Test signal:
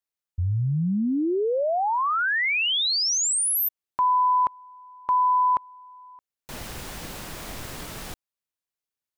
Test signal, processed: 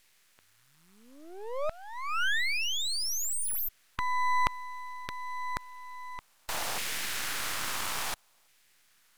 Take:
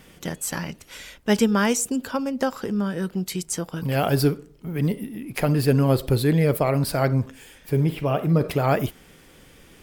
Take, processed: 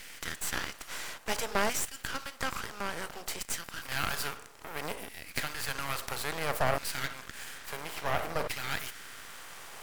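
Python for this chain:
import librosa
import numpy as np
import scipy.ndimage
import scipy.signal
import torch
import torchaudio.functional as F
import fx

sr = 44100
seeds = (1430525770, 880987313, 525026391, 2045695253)

y = fx.bin_compress(x, sr, power=0.6)
y = fx.filter_lfo_highpass(y, sr, shape='saw_down', hz=0.59, low_hz=670.0, high_hz=2100.0, q=1.6)
y = np.maximum(y, 0.0)
y = y * librosa.db_to_amplitude(-5.0)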